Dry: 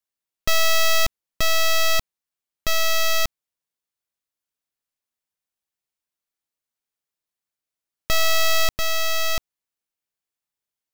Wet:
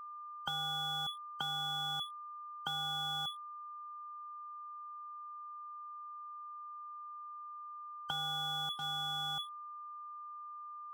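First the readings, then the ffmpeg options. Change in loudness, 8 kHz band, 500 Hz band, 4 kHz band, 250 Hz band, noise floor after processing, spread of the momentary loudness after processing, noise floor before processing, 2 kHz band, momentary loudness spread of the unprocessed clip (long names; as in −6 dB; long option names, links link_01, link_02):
−17.5 dB, −27.5 dB, −32.5 dB, −10.5 dB, can't be measured, −48 dBFS, 12 LU, below −85 dBFS, −20.0 dB, 7 LU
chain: -filter_complex "[0:a]bandreject=frequency=50:width_type=h:width=6,bandreject=frequency=100:width_type=h:width=6,bandreject=frequency=150:width_type=h:width=6,bandreject=frequency=200:width_type=h:width=6,afftfilt=real='re*(1-between(b*sr/4096,280,1900))':imag='im*(1-between(b*sr/4096,280,1900))':win_size=4096:overlap=0.75,acompressor=threshold=-28dB:ratio=3,lowpass=frequency=2900:width_type=q:width=0.5098,lowpass=frequency=2900:width_type=q:width=0.6013,lowpass=frequency=2900:width_type=q:width=0.9,lowpass=frequency=2900:width_type=q:width=2.563,afreqshift=-3400,acrossover=split=88|960[link_01][link_02][link_03];[link_02]acompressor=threshold=-43dB:ratio=4[link_04];[link_03]acompressor=threshold=-41dB:ratio=4[link_05];[link_01][link_04][link_05]amix=inputs=3:normalize=0,aeval=exprs='sgn(val(0))*max(abs(val(0))-0.00237,0)':channel_layout=same,aeval=exprs='val(0)+0.00501*sin(2*PI*1200*n/s)':channel_layout=same,volume=1.5dB"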